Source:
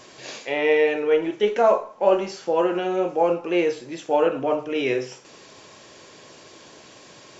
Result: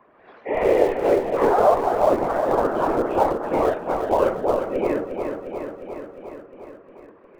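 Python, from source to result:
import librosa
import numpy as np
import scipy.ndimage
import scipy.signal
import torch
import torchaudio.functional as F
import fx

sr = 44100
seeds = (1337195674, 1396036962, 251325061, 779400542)

p1 = fx.highpass(x, sr, hz=330.0, slope=6)
p2 = fx.noise_reduce_blind(p1, sr, reduce_db=18)
p3 = scipy.signal.sosfilt(scipy.signal.butter(4, 1600.0, 'lowpass', fs=sr, output='sos'), p2)
p4 = p3 + 0.38 * np.pad(p3, (int(4.7 * sr / 1000.0), 0))[:len(p3)]
p5 = fx.whisperise(p4, sr, seeds[0])
p6 = fx.schmitt(p5, sr, flips_db=-18.0)
p7 = p5 + (p6 * librosa.db_to_amplitude(-10.5))
p8 = fx.echo_pitch(p7, sr, ms=131, semitones=3, count=3, db_per_echo=-6.0)
p9 = fx.echo_feedback(p8, sr, ms=355, feedback_pct=57, wet_db=-8.5)
y = fx.band_squash(p9, sr, depth_pct=40)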